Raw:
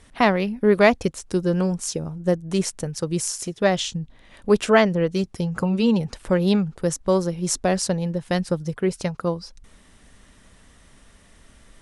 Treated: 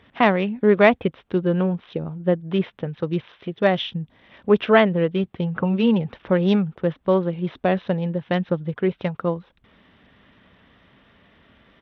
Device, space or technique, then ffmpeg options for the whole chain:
Bluetooth headset: -af "highpass=100,aresample=8000,aresample=44100,volume=1dB" -ar 32000 -c:a sbc -b:a 64k

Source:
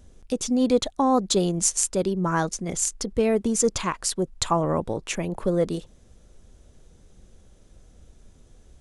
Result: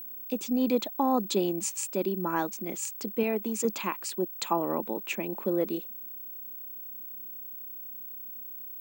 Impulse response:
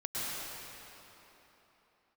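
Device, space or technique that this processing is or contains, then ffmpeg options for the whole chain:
old television with a line whistle: -filter_complex "[0:a]highpass=frequency=210:width=0.5412,highpass=frequency=210:width=1.3066,equalizer=frequency=210:width_type=q:width=4:gain=8,equalizer=frequency=340:width_type=q:width=4:gain=6,equalizer=frequency=880:width_type=q:width=4:gain=5,equalizer=frequency=2500:width_type=q:width=4:gain=9,equalizer=frequency=5800:width_type=q:width=4:gain=-6,lowpass=frequency=8600:width=0.5412,lowpass=frequency=8600:width=1.3066,aeval=exprs='val(0)+0.0282*sin(2*PI*15734*n/s)':channel_layout=same,asettb=1/sr,asplit=3[link_01][link_02][link_03];[link_01]atrim=end=3.234[link_04];[link_02]atrim=start=3.23:end=3.65,asetpts=PTS-STARTPTS,afade=type=in:duration=0.004:curve=qsin,afade=type=out:start_time=0.416:duration=0.004:curve=qsin,lowshelf=frequency=190:gain=-12[link_05];[link_03]atrim=start=3.646[link_06];[link_04][link_05]acrossfade=duration=0.004:curve1=hsin:curve2=qsin[link_07];[link_07][link_06]acrossfade=duration=0.004:curve1=qsin:curve2=hsin,volume=-7.5dB"

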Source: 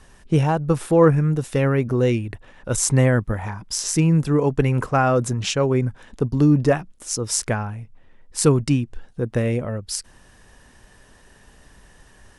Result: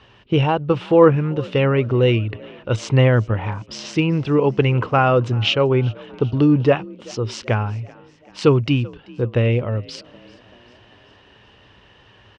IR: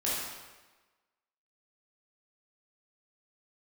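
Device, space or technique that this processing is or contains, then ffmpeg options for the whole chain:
frequency-shifting delay pedal into a guitar cabinet: -filter_complex "[0:a]asplit=5[link_01][link_02][link_03][link_04][link_05];[link_02]adelay=386,afreqshift=43,volume=-23.5dB[link_06];[link_03]adelay=772,afreqshift=86,volume=-28.5dB[link_07];[link_04]adelay=1158,afreqshift=129,volume=-33.6dB[link_08];[link_05]adelay=1544,afreqshift=172,volume=-38.6dB[link_09];[link_01][link_06][link_07][link_08][link_09]amix=inputs=5:normalize=0,highpass=100,equalizer=frequency=110:width_type=q:width=4:gain=6,equalizer=frequency=160:width_type=q:width=4:gain=-8,equalizer=frequency=250:width_type=q:width=4:gain=-5,equalizer=frequency=700:width_type=q:width=4:gain=-3,equalizer=frequency=1700:width_type=q:width=4:gain=-5,equalizer=frequency=2900:width_type=q:width=4:gain=8,lowpass=frequency=4000:width=0.5412,lowpass=frequency=4000:width=1.3066,volume=4dB"

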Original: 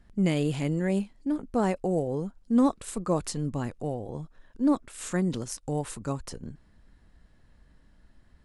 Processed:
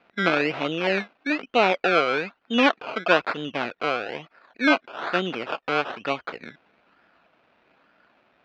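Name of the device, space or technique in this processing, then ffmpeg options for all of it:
circuit-bent sampling toy: -af "acrusher=samples=19:mix=1:aa=0.000001:lfo=1:lforange=11.4:lforate=1.1,highpass=400,equalizer=frequency=680:width_type=q:width=4:gain=5,equalizer=frequency=1400:width_type=q:width=4:gain=8,equalizer=frequency=2500:width_type=q:width=4:gain=8,lowpass=frequency=4100:width=0.5412,lowpass=frequency=4100:width=1.3066,volume=7dB"

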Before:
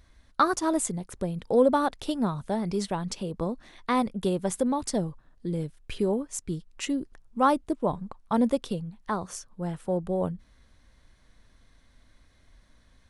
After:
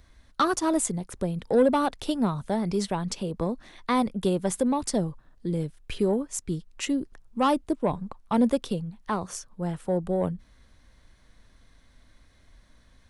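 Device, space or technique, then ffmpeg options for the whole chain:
one-band saturation: -filter_complex "[0:a]acrossover=split=380|2200[link_01][link_02][link_03];[link_02]asoftclip=type=tanh:threshold=-20.5dB[link_04];[link_01][link_04][link_03]amix=inputs=3:normalize=0,volume=2dB"

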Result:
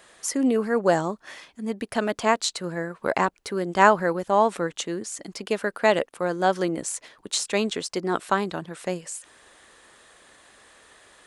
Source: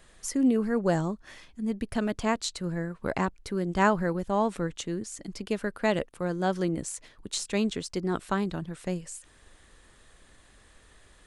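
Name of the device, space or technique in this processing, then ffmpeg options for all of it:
filter by subtraction: -filter_complex "[0:a]asplit=2[link_01][link_02];[link_02]lowpass=680,volume=-1[link_03];[link_01][link_03]amix=inputs=2:normalize=0,volume=6dB"

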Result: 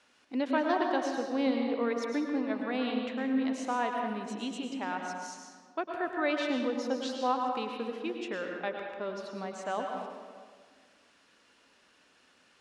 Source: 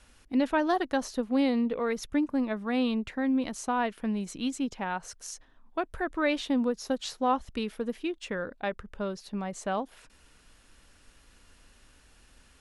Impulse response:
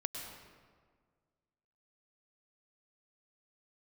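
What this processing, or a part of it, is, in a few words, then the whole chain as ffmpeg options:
supermarket ceiling speaker: -filter_complex "[0:a]highpass=280,lowpass=6000[link_01];[1:a]atrim=start_sample=2205[link_02];[link_01][link_02]afir=irnorm=-1:irlink=0,volume=-1.5dB"

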